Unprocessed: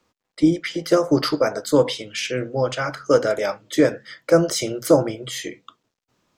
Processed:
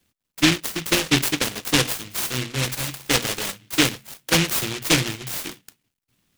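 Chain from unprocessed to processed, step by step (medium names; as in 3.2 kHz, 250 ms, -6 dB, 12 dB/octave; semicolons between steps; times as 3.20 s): peaking EQ 740 Hz -11.5 dB 2 oct; delay time shaken by noise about 2.6 kHz, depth 0.44 ms; trim +3 dB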